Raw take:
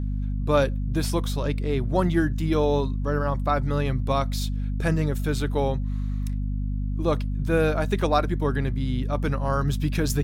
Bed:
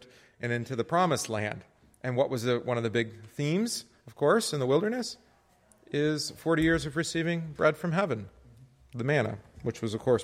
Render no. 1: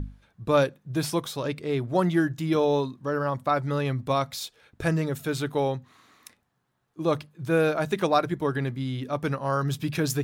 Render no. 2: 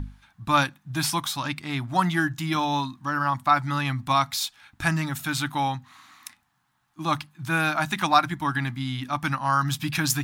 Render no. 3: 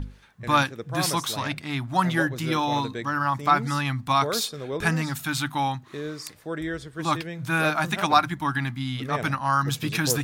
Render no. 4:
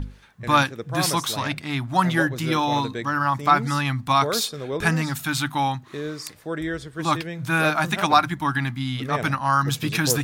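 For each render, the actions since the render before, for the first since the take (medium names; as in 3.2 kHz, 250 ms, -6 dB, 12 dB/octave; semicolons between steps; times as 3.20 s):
hum notches 50/100/150/200/250 Hz
FFT filter 300 Hz 0 dB, 450 Hz -23 dB, 800 Hz +7 dB
add bed -6 dB
trim +2.5 dB; peak limiter -3 dBFS, peak gain reduction 1 dB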